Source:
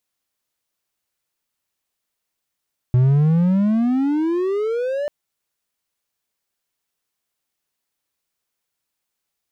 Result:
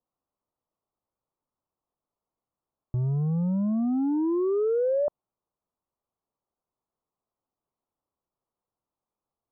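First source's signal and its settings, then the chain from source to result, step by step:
gliding synth tone triangle, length 2.14 s, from 122 Hz, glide +27.5 st, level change -9.5 dB, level -9 dB
steep low-pass 1200 Hz 48 dB/oct; limiter -21 dBFS

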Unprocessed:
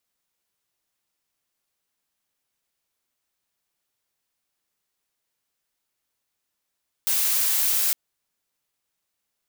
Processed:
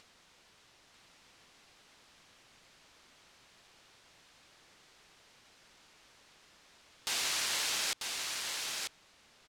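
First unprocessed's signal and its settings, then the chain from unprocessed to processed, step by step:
noise blue, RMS -22 dBFS 0.86 s
LPF 5000 Hz 12 dB/oct; upward compressor, threshold -45 dBFS; on a send: echo 0.942 s -4.5 dB

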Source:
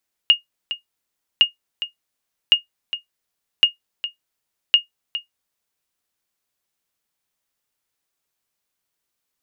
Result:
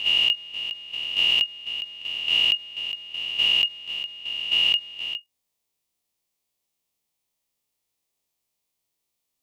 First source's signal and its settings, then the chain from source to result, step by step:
sonar ping 2850 Hz, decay 0.13 s, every 1.11 s, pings 5, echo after 0.41 s, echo -13 dB -3.5 dBFS
spectral swells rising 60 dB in 1.54 s; bell 1500 Hz -12 dB 0.54 oct; level quantiser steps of 10 dB

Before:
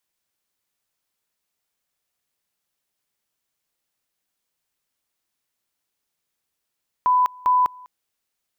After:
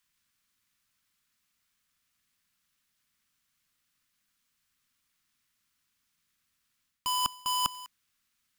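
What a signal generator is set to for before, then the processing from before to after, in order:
two-level tone 999 Hz -14 dBFS, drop 25.5 dB, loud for 0.20 s, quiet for 0.20 s, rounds 2
half-waves squared off; band shelf 550 Hz -12 dB; reverse; compressor 5:1, threshold -26 dBFS; reverse

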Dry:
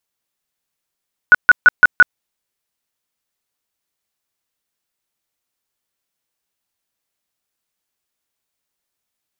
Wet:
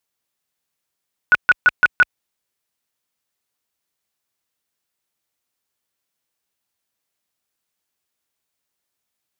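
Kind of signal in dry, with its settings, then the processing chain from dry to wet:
tone bursts 1470 Hz, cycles 38, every 0.17 s, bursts 5, -2 dBFS
rattling part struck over -35 dBFS, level -8 dBFS; HPF 42 Hz 12 dB/oct; limiter -6 dBFS

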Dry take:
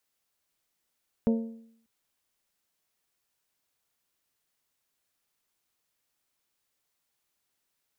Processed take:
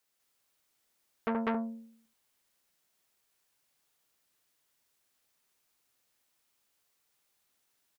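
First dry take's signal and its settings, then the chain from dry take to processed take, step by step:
metal hit bell, length 0.59 s, lowest mode 227 Hz, decay 0.68 s, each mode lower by 7 dB, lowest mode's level -19 dB
low shelf 150 Hz -3.5 dB; loudspeakers at several distances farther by 27 m -8 dB, 68 m 0 dB, 94 m -10 dB; core saturation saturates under 1300 Hz

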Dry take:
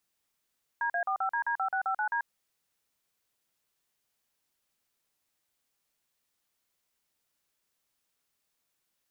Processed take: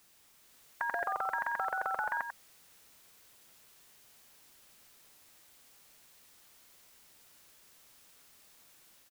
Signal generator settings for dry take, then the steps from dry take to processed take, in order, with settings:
DTMF "DA45DD5659D", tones 89 ms, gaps 42 ms, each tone -29.5 dBFS
AGC gain up to 3 dB; echo 94 ms -13.5 dB; spectral compressor 2:1

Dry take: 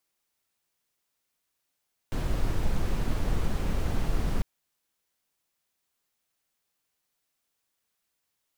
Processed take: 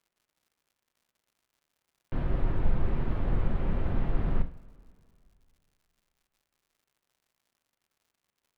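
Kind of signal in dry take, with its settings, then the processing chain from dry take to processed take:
noise brown, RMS -25 dBFS 2.30 s
air absorption 500 m; two-slope reverb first 0.4 s, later 2.6 s, from -19 dB, DRR 7.5 dB; crackle 160/s -59 dBFS

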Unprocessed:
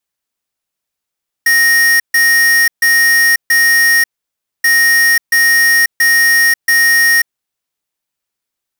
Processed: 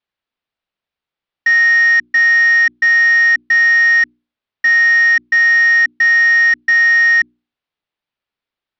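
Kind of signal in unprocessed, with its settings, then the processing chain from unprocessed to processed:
beep pattern square 1860 Hz, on 0.54 s, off 0.14 s, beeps 4, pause 0.60 s, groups 2, -9.5 dBFS
inverse Chebyshev low-pass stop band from 11000 Hz, stop band 60 dB; notches 60/120/180/240/300/360 Hz

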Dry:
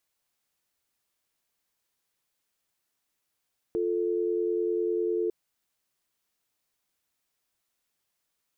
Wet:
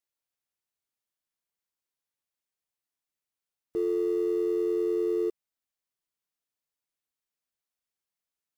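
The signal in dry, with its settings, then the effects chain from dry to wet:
call progress tone dial tone, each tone -27.5 dBFS 1.55 s
G.711 law mismatch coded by mu; upward expander 2.5:1, over -41 dBFS

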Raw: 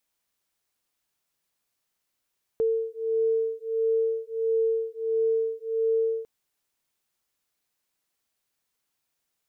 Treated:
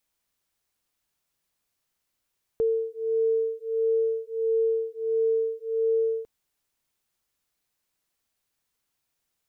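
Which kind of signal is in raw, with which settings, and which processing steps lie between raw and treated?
beating tones 449 Hz, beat 1.5 Hz, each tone -26 dBFS 3.65 s
low shelf 110 Hz +7 dB

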